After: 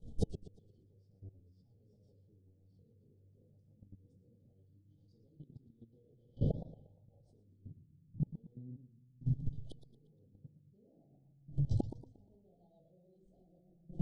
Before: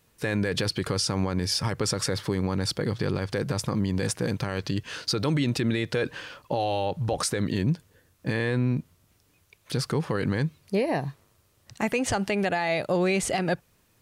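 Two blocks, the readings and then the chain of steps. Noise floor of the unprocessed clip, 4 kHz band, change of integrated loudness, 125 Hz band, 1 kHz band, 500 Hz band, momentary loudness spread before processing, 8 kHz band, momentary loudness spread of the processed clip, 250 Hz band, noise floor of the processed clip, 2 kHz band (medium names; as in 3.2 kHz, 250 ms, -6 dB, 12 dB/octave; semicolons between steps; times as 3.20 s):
-65 dBFS, under -35 dB, -13.0 dB, -12.5 dB, under -30 dB, -24.5 dB, 6 LU, under -35 dB, 22 LU, -19.0 dB, -68 dBFS, under -40 dB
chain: coarse spectral quantiser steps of 15 dB; tilt EQ -4.5 dB/octave; simulated room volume 130 m³, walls mixed, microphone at 1.4 m; compression 2:1, threshold -29 dBFS, peak gain reduction 16 dB; peaking EQ 88 Hz -5 dB 0.22 oct; inverted gate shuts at -23 dBFS, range -35 dB; level held to a coarse grid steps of 18 dB; rotary cabinet horn 7.5 Hz; FFT band-reject 840–3000 Hz; steep low-pass 10 kHz; modulated delay 118 ms, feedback 37%, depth 211 cents, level -12.5 dB; trim +7.5 dB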